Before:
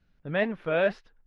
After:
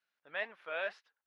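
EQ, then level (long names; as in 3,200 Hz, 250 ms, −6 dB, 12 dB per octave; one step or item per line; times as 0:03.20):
high-pass filter 910 Hz 12 dB per octave
−6.5 dB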